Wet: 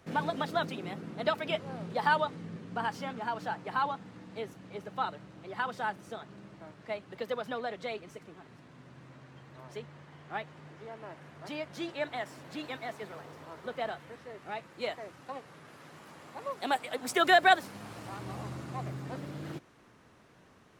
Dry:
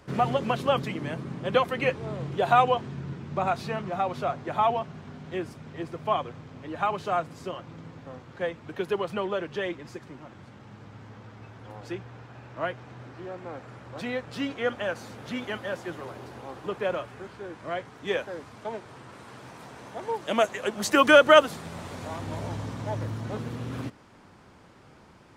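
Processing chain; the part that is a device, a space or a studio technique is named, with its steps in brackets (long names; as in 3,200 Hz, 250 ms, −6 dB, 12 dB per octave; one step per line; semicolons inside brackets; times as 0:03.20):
nightcore (speed change +22%)
level −6.5 dB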